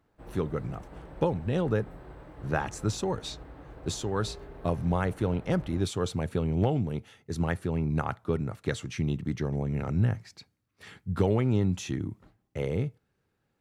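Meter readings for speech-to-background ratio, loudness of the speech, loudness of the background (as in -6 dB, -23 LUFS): 17.0 dB, -30.5 LUFS, -47.5 LUFS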